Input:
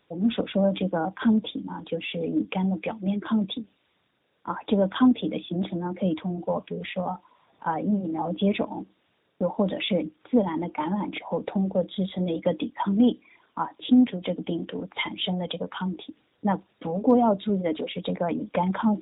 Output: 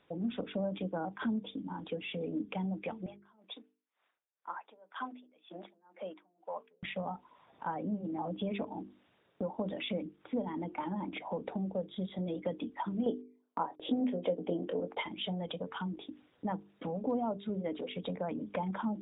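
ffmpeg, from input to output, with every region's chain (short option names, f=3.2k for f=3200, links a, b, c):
-filter_complex "[0:a]asettb=1/sr,asplit=3[a][b][c];[a]atrim=end=3.064[d];[b]atrim=start=3.06:end=6.83,asetpts=PTS-STARTPTS,afade=t=in:d=0.004:c=qsin,afade=t=out:st=3.766:d=0.004:c=qsin,highpass=750,lowpass=2.7k,aeval=exprs='val(0)*pow(10,-30*(0.5-0.5*cos(2*PI*2*n/s))/20)':c=same[e];[c]atrim=start=6.826[f];[d][e]acrossfade=d=0.004:c1=hsin:c2=qsin[g];[g][f]acrossfade=d=0.004:c1=qsin:c2=hsin,asettb=1/sr,asplit=3[h][i][j];[h]atrim=end=13.064[k];[i]atrim=start=13.06:end=15.03,asetpts=PTS-STARTPTS,afade=t=in:d=0.004:c=qsin,afade=t=out:st=1.966:d=0.004:c=qsin,equalizer=f=540:t=o:w=1.5:g=13.5,asplit=2[l][m];[m]adelay=23,volume=-11dB[n];[l][n]amix=inputs=2:normalize=0,atrim=end_sample=86877,agate=range=-28dB:threshold=-44dB:ratio=16:release=100:detection=peak[o];[j]atrim=start=15.026[p];[k][o]acrossfade=d=0.004:c1=hsin:c2=qsin[q];[q][p]acrossfade=d=0.004:c1=qsin:c2=hsin,lowpass=f=3.1k:p=1,bandreject=f=50:t=h:w=6,bandreject=f=100:t=h:w=6,bandreject=f=150:t=h:w=6,bandreject=f=200:t=h:w=6,bandreject=f=250:t=h:w=6,bandreject=f=300:t=h:w=6,bandreject=f=350:t=h:w=6,bandreject=f=400:t=h:w=6,bandreject=f=450:t=h:w=6,acompressor=threshold=-41dB:ratio=2"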